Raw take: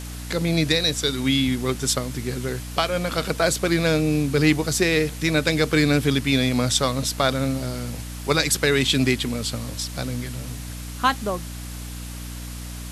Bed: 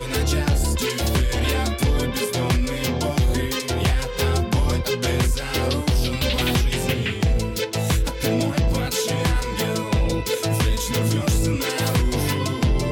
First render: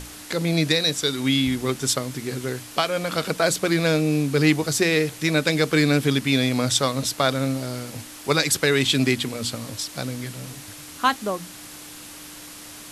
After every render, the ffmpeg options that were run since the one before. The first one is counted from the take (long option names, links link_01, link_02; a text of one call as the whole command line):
ffmpeg -i in.wav -af "bandreject=frequency=60:width_type=h:width=6,bandreject=frequency=120:width_type=h:width=6,bandreject=frequency=180:width_type=h:width=6,bandreject=frequency=240:width_type=h:width=6" out.wav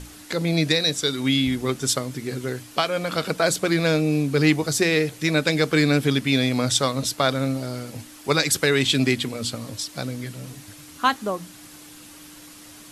ffmpeg -i in.wav -af "afftdn=noise_reduction=6:noise_floor=-41" out.wav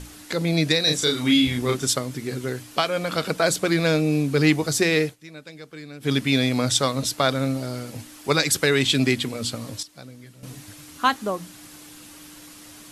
ffmpeg -i in.wav -filter_complex "[0:a]asettb=1/sr,asplit=3[link_01][link_02][link_03];[link_01]atrim=end=0.834[link_04];[link_02]atrim=start=0.83:end=1.86,asetpts=PTS-STARTPTS,afade=type=in:duration=0.004:curve=qsin,afade=type=out:start_time=1.026:duration=0.004:curve=qsin,asplit=2[link_05][link_06];[link_06]adelay=33,volume=-2.5dB[link_07];[link_05][link_07]amix=inputs=2:normalize=0,atrim=end_sample=45423[link_08];[link_03]atrim=start=1.856[link_09];[link_04][link_08]acrossfade=duration=0.004:curve1=hsin:curve2=qsin[link_10];[link_10][link_09]acrossfade=duration=0.004:curve1=qsin:curve2=hsin,asplit=5[link_11][link_12][link_13][link_14][link_15];[link_11]atrim=end=5.16,asetpts=PTS-STARTPTS,afade=type=out:start_time=5.04:duration=0.12:silence=0.0944061[link_16];[link_12]atrim=start=5.16:end=6,asetpts=PTS-STARTPTS,volume=-20.5dB[link_17];[link_13]atrim=start=6:end=9.83,asetpts=PTS-STARTPTS,afade=type=in:duration=0.12:silence=0.0944061,afade=type=out:start_time=3.68:duration=0.15:curve=log:silence=0.237137[link_18];[link_14]atrim=start=9.83:end=10.43,asetpts=PTS-STARTPTS,volume=-12.5dB[link_19];[link_15]atrim=start=10.43,asetpts=PTS-STARTPTS,afade=type=in:duration=0.15:curve=log:silence=0.237137[link_20];[link_16][link_17][link_18][link_19][link_20]concat=n=5:v=0:a=1" out.wav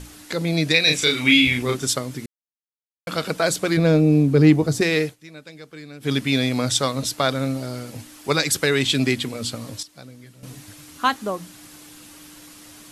ffmpeg -i in.wav -filter_complex "[0:a]asettb=1/sr,asplit=3[link_01][link_02][link_03];[link_01]atrim=end=0.744[link_04];[link_02]atrim=start=0.74:end=1.63,asetpts=PTS-STARTPTS,afade=type=in:duration=0.004:curve=qsin,afade=type=out:start_time=0.886:duration=0.004:curve=qsin,equalizer=frequency=2400:width_type=o:width=0.55:gain=14.5[link_05];[link_03]atrim=start=1.626[link_06];[link_04][link_05]acrossfade=duration=0.004:curve1=hsin:curve2=qsin[link_07];[link_07][link_06]acrossfade=duration=0.004:curve1=qsin:curve2=hsin,asettb=1/sr,asplit=3[link_08][link_09][link_10];[link_08]atrim=end=3.774[link_11];[link_09]atrim=start=3.77:end=4.81,asetpts=PTS-STARTPTS,afade=type=in:duration=0.004:curve=qsin,afade=type=out:start_time=1.036:duration=0.004:curve=qsin,tiltshelf=frequency=870:gain=7[link_12];[link_10]atrim=start=4.806[link_13];[link_11][link_12]acrossfade=duration=0.004:curve1=hsin:curve2=qsin[link_14];[link_14][link_13]acrossfade=duration=0.004:curve1=qsin:curve2=hsin,asplit=3[link_15][link_16][link_17];[link_15]atrim=end=2.26,asetpts=PTS-STARTPTS,afade=type=out:start_time=2.256:duration=0.004:curve=hsin[link_18];[link_16]atrim=start=2.26:end=3.07,asetpts=PTS-STARTPTS,volume=0[link_19];[link_17]atrim=start=3.07,asetpts=PTS-STARTPTS,afade=type=in:duration=0.004:curve=hsin[link_20];[link_18][link_19][link_20]concat=n=3:v=0:a=1" out.wav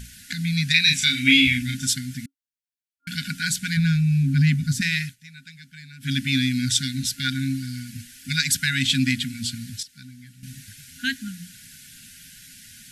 ffmpeg -i in.wav -af "afftfilt=real='re*(1-between(b*sr/4096,270,1400))':imag='im*(1-between(b*sr/4096,270,1400))':win_size=4096:overlap=0.75" out.wav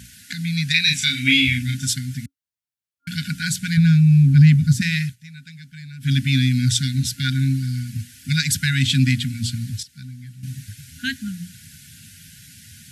ffmpeg -i in.wav -af "highpass=frequency=74:width=0.5412,highpass=frequency=74:width=1.3066,asubboost=boost=5.5:cutoff=150" out.wav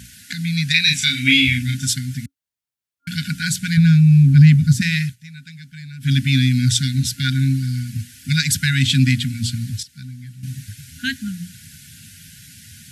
ffmpeg -i in.wav -af "volume=2dB" out.wav